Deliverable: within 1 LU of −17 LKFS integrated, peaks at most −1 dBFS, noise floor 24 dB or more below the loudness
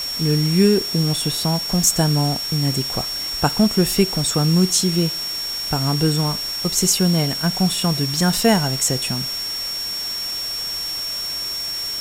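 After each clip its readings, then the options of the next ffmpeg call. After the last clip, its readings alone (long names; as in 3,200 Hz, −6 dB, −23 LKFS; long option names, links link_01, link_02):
interfering tone 5,500 Hz; level of the tone −24 dBFS; background noise floor −26 dBFS; target noise floor −43 dBFS; integrated loudness −19.0 LKFS; sample peak −2.5 dBFS; target loudness −17.0 LKFS
→ -af "bandreject=frequency=5500:width=30"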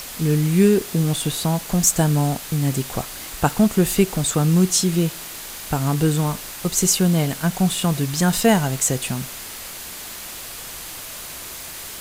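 interfering tone none found; background noise floor −35 dBFS; target noise floor −44 dBFS
→ -af "afftdn=noise_reduction=9:noise_floor=-35"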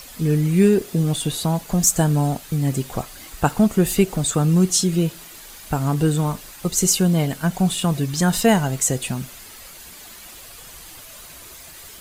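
background noise floor −41 dBFS; target noise floor −44 dBFS
→ -af "afftdn=noise_reduction=6:noise_floor=-41"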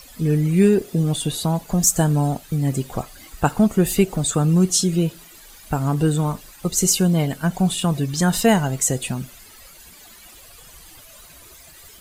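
background noise floor −46 dBFS; integrated loudness −20.0 LKFS; sample peak −2.0 dBFS; target loudness −17.0 LKFS
→ -af "volume=3dB,alimiter=limit=-1dB:level=0:latency=1"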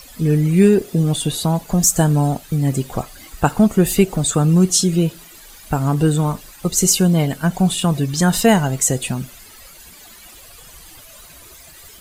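integrated loudness −17.0 LKFS; sample peak −1.0 dBFS; background noise floor −43 dBFS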